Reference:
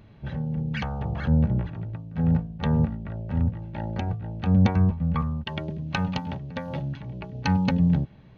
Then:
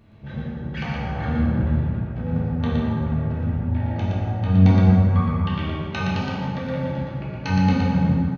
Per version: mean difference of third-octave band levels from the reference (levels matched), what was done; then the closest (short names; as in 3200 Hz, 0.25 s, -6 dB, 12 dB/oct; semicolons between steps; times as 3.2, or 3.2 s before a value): 6.0 dB: echo 0.118 s -4 dB; plate-style reverb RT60 2.5 s, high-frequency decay 0.55×, DRR -6.5 dB; gain -4.5 dB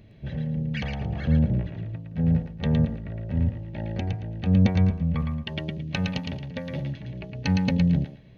2.5 dB: band shelf 1100 Hz -9.5 dB 1.1 oct; on a send: thinning echo 0.112 s, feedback 24%, high-pass 820 Hz, level -3.5 dB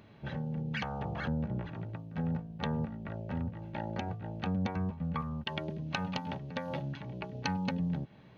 4.5 dB: HPF 250 Hz 6 dB/oct; compressor 2.5:1, threshold -33 dBFS, peak gain reduction 9.5 dB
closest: second